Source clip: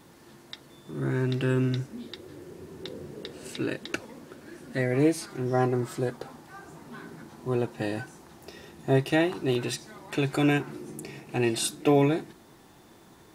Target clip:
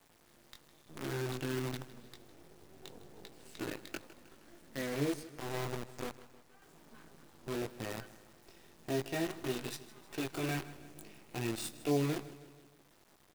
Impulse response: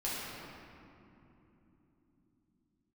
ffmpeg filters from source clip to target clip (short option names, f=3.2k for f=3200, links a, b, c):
-filter_complex "[0:a]acrossover=split=450[a][b];[b]acompressor=threshold=-28dB:ratio=3[c];[a][c]amix=inputs=2:normalize=0,flanger=delay=17.5:depth=3.4:speed=0.88,acrusher=bits=6:dc=4:mix=0:aa=0.000001,asettb=1/sr,asplit=3[d][e][f];[d]atrim=end=5.234[g];[e]atrim=start=5.23:end=6.62,asetpts=PTS-STARTPTS,afade=t=in:d=0.004:c=qsin,afade=t=out:st=1.386:d=0.004:c=qsin,aeval=exprs='0.133*(cos(1*acos(clip(val(0)/0.133,-1,1)))-cos(1*PI/2))+0.0133*(cos(3*acos(clip(val(0)/0.133,-1,1)))-cos(3*PI/2))+0.0237*(cos(7*acos(clip(val(0)/0.133,-1,1)))-cos(7*PI/2))':c=same[h];[f]atrim=start=6.616[i];[g][h]acrossfade=d=0.004:c1=hsin:c2=qsin[j];[j][i]acrossfade=d=0.004:c1=qsin:c2=hsin,aecho=1:1:157|314|471|628|785:0.141|0.0763|0.0412|0.0222|0.012,volume=-7.5dB"